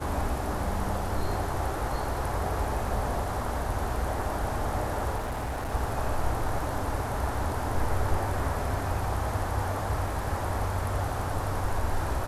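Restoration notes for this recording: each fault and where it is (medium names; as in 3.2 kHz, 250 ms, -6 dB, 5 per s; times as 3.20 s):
5.17–5.74 s: clipped -28.5 dBFS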